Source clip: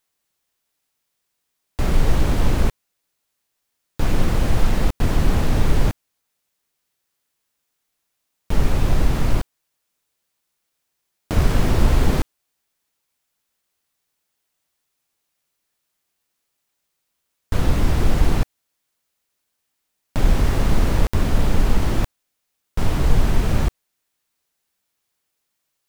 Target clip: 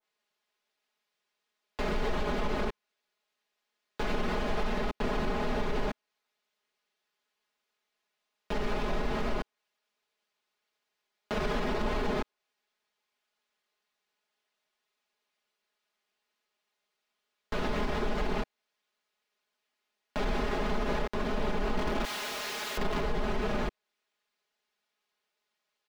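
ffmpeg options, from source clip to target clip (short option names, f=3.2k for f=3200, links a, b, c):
-filter_complex "[0:a]asettb=1/sr,asplit=3[a][b][c];[a]atrim=end=21.744[d];[b]atrim=start=21.74:end=23.04,asetpts=PTS-STARTPTS,afade=t=in:d=0.004:c=qsin,afade=t=out:st=1.296:d=0.004:c=qsin,aeval=exprs='val(0)+0.5*0.1*sgn(val(0))':c=same[e];[c]atrim=start=23.036[f];[d][e]acrossfade=d=0.004:c1=hsin:c2=qsin[g];[g][f]acrossfade=d=0.004:c1=qsin:c2=hsin,acrossover=split=260 5000:gain=0.2 1 0.141[h][i][j];[h][i][j]amix=inputs=3:normalize=0,aecho=1:1:4.8:0.87,alimiter=limit=-17.5dB:level=0:latency=1:release=59,adynamicequalizer=threshold=0.00708:dfrequency=1500:dqfactor=0.7:tfrequency=1500:tqfactor=0.7:attack=5:release=100:ratio=0.375:range=1.5:mode=cutabove:tftype=highshelf,volume=-3.5dB"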